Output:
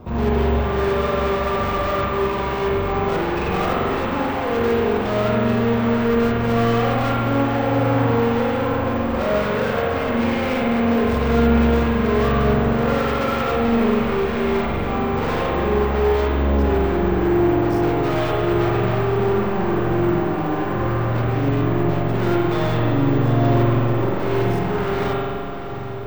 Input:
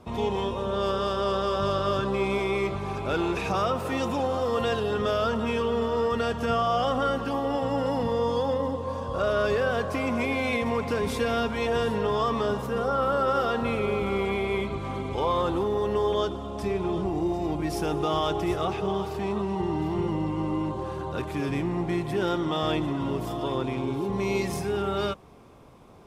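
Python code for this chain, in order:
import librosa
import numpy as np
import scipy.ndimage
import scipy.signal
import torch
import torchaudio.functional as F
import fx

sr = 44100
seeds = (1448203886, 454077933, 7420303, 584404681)

p1 = fx.lowpass(x, sr, hz=1700.0, slope=6)
p2 = fx.low_shelf(p1, sr, hz=170.0, db=8.0)
p3 = fx.hum_notches(p2, sr, base_hz=50, count=3)
p4 = fx.rider(p3, sr, range_db=10, speed_s=0.5)
p5 = p3 + (p4 * 10.0 ** (2.0 / 20.0))
p6 = np.clip(10.0 ** (24.5 / 20.0) * p5, -1.0, 1.0) / 10.0 ** (24.5 / 20.0)
p7 = fx.echo_diffused(p6, sr, ms=749, feedback_pct=71, wet_db=-12.5)
p8 = fx.rev_spring(p7, sr, rt60_s=2.0, pass_ms=(43,), chirp_ms=75, drr_db=-3.5)
y = np.repeat(p8[::2], 2)[:len(p8)]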